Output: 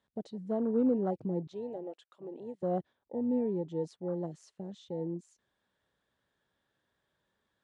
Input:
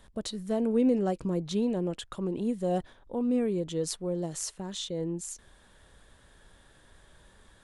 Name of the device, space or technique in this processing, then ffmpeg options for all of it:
over-cleaned archive recording: -filter_complex "[0:a]asettb=1/sr,asplit=3[a][b][c];[a]atrim=end=1.474[d];[b]atrim=start=1.47:end=2.63,asetpts=PTS-STARTPTS,afade=t=in:d=0.004:c=qsin,afade=t=out:st=1.156:d=0.004:c=qsin,highpass=490[e];[c]atrim=start=2.626[f];[d][e]acrossfade=d=0.004:c1=hsin:c2=qsin[g];[g][f]acrossfade=d=0.004:c1=qsin:c2=hsin,highpass=120,lowpass=5.5k,afwtdn=0.0178,volume=-3dB"

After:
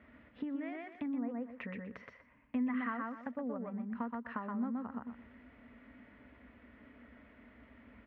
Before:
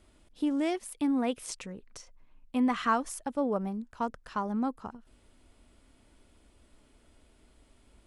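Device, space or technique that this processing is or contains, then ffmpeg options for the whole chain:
bass amplifier: -filter_complex "[0:a]bandreject=f=360:w=12,asettb=1/sr,asplit=3[a][b][c];[a]atrim=end=1.064[d];[b]atrim=start=1.06:end=1.59,asetpts=PTS-STARTPTS,afade=t=in:d=0.004:c=qsin,afade=t=out:st=0.526:d=0.004:c=qsin,lowpass=1.1k[e];[c]atrim=start=1.586[f];[d][e]acrossfade=d=0.004:c1=hsin:c2=qsin[g];[g][f]acrossfade=d=0.004:c1=qsin:c2=hsin,aecho=1:1:122|244|366:0.668|0.107|0.0171,acompressor=threshold=-44dB:ratio=5,highpass=f=66:w=0.5412,highpass=f=66:w=1.3066,equalizer=f=90:t=q:w=4:g=-9,equalizer=f=160:t=q:w=4:g=-8,equalizer=f=240:t=q:w=4:g=8,equalizer=f=350:t=q:w=4:g=-8,equalizer=f=810:t=q:w=4:g=-5,equalizer=f=1.9k:t=q:w=4:g=10,lowpass=f=2.3k:w=0.5412,lowpass=f=2.3k:w=1.3066,volume=5dB"

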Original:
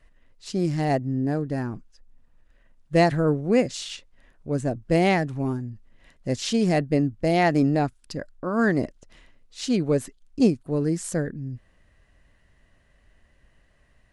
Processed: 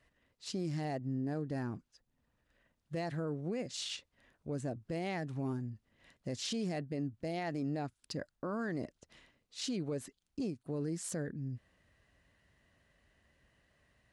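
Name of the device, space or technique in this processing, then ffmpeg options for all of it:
broadcast voice chain: -af "highpass=72,deesser=0.5,acompressor=threshold=-26dB:ratio=4,equalizer=f=4.1k:t=o:w=1.1:g=2.5,alimiter=limit=-23dB:level=0:latency=1:release=13,volume=-6.5dB"

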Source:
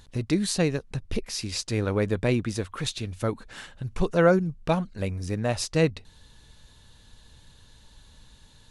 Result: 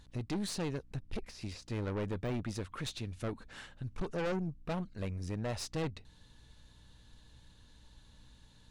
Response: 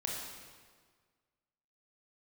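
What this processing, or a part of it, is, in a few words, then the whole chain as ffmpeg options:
valve amplifier with mains hum: -filter_complex "[0:a]asettb=1/sr,asplit=3[a][b][c];[a]atrim=end=1.054[d];[b]atrim=start=1.05:end=2.34,asetpts=PTS-STARTPTS,afade=t=in:d=0.004:c=qsin,afade=t=out:st=1.286:d=0.004:c=qsin,deesser=0.95[e];[c]atrim=start=2.336[f];[d][e]acrossfade=d=0.004:c1=hsin:c2=qsin[g];[g][f]acrossfade=d=0.004:c1=qsin:c2=hsin,aeval=exprs='(tanh(20*val(0)+0.4)-tanh(0.4))/20':c=same,aeval=exprs='val(0)+0.00126*(sin(2*PI*60*n/s)+sin(2*PI*2*60*n/s)/2+sin(2*PI*3*60*n/s)/3+sin(2*PI*4*60*n/s)/4+sin(2*PI*5*60*n/s)/5)':c=same,highshelf=f=8.2k:g=-6.5,volume=-5.5dB"

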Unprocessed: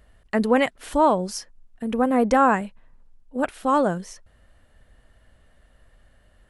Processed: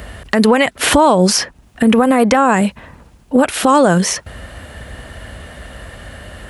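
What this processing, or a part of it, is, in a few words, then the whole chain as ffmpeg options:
mastering chain: -filter_complex "[0:a]highpass=f=53:w=0.5412,highpass=f=53:w=1.3066,equalizer=f=2.5k:t=o:w=0.77:g=2,acrossover=split=820|3800[a][b][c];[a]acompressor=threshold=-31dB:ratio=4[d];[b]acompressor=threshold=-34dB:ratio=4[e];[c]acompressor=threshold=-45dB:ratio=4[f];[d][e][f]amix=inputs=3:normalize=0,acompressor=threshold=-33dB:ratio=3,asoftclip=type=hard:threshold=-21dB,alimiter=level_in=28dB:limit=-1dB:release=50:level=0:latency=1,volume=-1dB"

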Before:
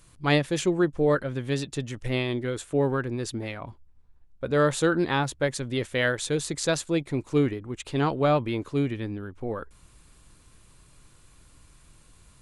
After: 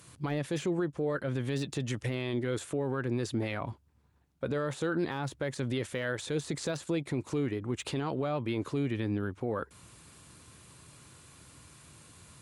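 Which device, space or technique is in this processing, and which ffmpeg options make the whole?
podcast mastering chain: -af "highpass=f=81:w=0.5412,highpass=f=81:w=1.3066,deesser=0.9,acompressor=threshold=-30dB:ratio=3,alimiter=level_in=2.5dB:limit=-24dB:level=0:latency=1:release=20,volume=-2.5dB,volume=4.5dB" -ar 48000 -c:a libmp3lame -b:a 96k

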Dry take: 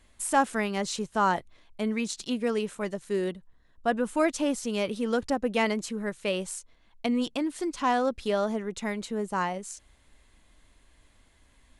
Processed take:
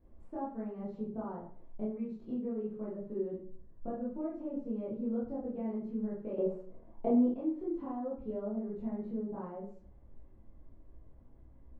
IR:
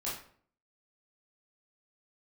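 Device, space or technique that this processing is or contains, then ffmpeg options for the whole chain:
television next door: -filter_complex "[0:a]acompressor=threshold=-39dB:ratio=4,lowpass=480[a];[1:a]atrim=start_sample=2205[b];[a][b]afir=irnorm=-1:irlink=0,asettb=1/sr,asplit=3[c][d][e];[c]atrim=end=6.384[f];[d]atrim=start=6.38:end=7.34,asetpts=PTS-STARTPTS,afade=t=in:d=0.004:c=qsin,afade=t=out:st=0.956:d=0.004:c=qsin,equalizer=f=570:w=0.4:g=11.5[g];[e]atrim=start=7.336[h];[f][g]acrossfade=d=0.004:c1=hsin:c2=qsin[i];[i][h]acrossfade=d=0.004:c1=qsin:c2=hsin,volume=2dB"

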